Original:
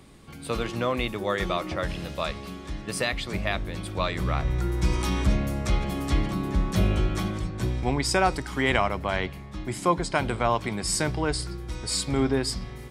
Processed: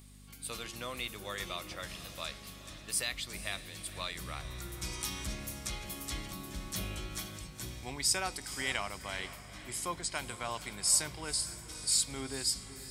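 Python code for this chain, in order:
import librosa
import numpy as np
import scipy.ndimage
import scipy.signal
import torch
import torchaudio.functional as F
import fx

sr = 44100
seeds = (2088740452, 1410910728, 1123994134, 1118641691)

p1 = scipy.signal.lfilter([1.0, -0.9], [1.0], x)
p2 = fx.dmg_buzz(p1, sr, base_hz=50.0, harmonics=5, level_db=-57.0, tilt_db=-4, odd_only=False)
p3 = p2 + fx.echo_diffused(p2, sr, ms=489, feedback_pct=45, wet_db=-13.0, dry=0)
y = F.gain(torch.from_numpy(p3), 1.5).numpy()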